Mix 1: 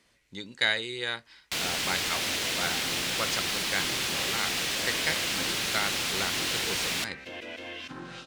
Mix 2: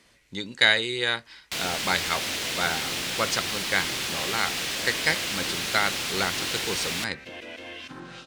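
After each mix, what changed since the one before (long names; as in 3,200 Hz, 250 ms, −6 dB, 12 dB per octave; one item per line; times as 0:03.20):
speech +6.5 dB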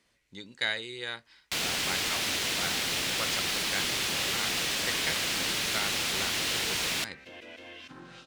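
speech −11.0 dB
second sound −6.5 dB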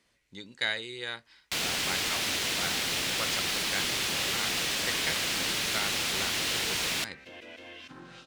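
nothing changed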